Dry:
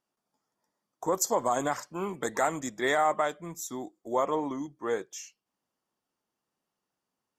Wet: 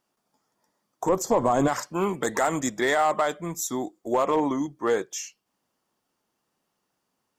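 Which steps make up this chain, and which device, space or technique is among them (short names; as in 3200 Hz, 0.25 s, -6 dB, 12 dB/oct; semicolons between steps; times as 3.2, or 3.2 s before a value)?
limiter into clipper (limiter -20.5 dBFS, peak gain reduction 6 dB; hard clip -23 dBFS, distortion -23 dB); 1.09–1.68 tilt -2.5 dB/oct; gain +8 dB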